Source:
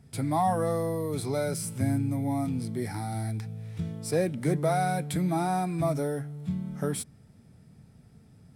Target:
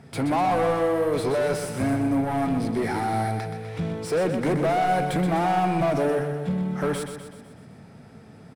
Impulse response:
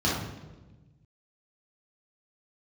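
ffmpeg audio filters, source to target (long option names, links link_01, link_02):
-filter_complex "[0:a]asplit=2[link_01][link_02];[link_02]highpass=frequency=720:poles=1,volume=27dB,asoftclip=type=tanh:threshold=-14dB[link_03];[link_01][link_03]amix=inputs=2:normalize=0,lowpass=frequency=1300:poles=1,volume=-6dB,aecho=1:1:125|250|375|500|625|750:0.422|0.223|0.118|0.0628|0.0333|0.0176,volume=-1.5dB"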